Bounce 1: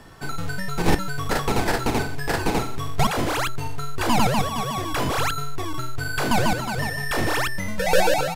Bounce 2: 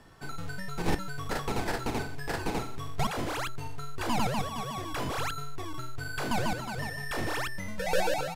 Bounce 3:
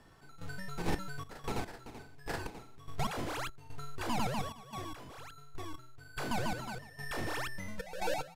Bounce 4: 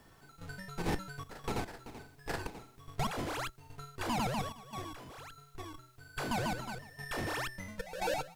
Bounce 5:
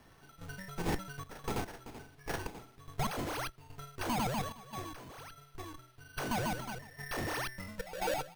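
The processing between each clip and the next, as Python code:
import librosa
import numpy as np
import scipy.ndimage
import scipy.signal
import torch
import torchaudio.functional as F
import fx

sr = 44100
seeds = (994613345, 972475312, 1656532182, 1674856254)

y1 = fx.high_shelf(x, sr, hz=12000.0, db=-3.5)
y1 = y1 * 10.0 ** (-9.0 / 20.0)
y2 = fx.step_gate(y1, sr, bpm=73, pattern='x.xxxx.x...x..xx', floor_db=-12.0, edge_ms=4.5)
y2 = y2 * 10.0 ** (-5.0 / 20.0)
y3 = fx.quant_dither(y2, sr, seeds[0], bits=12, dither='triangular')
y3 = fx.cheby_harmonics(y3, sr, harmonics=(6,), levels_db=(-26,), full_scale_db=-20.5)
y4 = np.repeat(y3[::6], 6)[:len(y3)]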